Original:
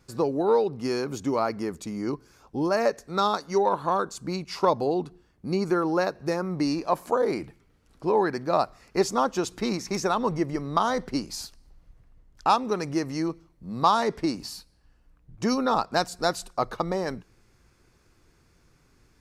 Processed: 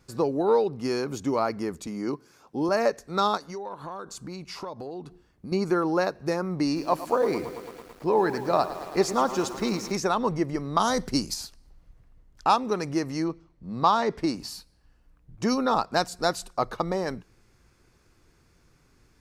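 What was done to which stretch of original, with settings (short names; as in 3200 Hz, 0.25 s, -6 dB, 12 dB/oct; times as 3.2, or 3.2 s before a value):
1.87–2.69 HPF 150 Hz
3.37–5.52 compressor 4:1, threshold -35 dBFS
6.65–9.92 lo-fi delay 0.11 s, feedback 80%, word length 7-bit, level -13 dB
10.79–11.34 tone controls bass +5 dB, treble +11 dB
13.24–14.18 air absorption 68 m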